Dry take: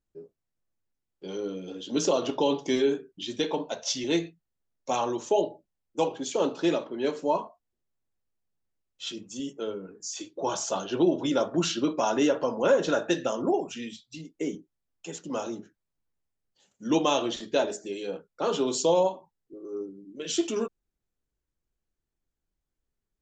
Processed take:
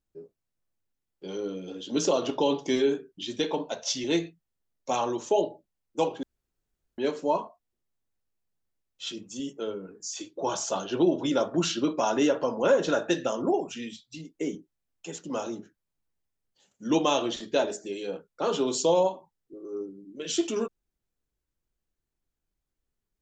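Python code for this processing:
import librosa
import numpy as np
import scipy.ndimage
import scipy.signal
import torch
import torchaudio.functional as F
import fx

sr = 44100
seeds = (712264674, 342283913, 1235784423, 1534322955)

y = fx.edit(x, sr, fx.room_tone_fill(start_s=6.23, length_s=0.75), tone=tone)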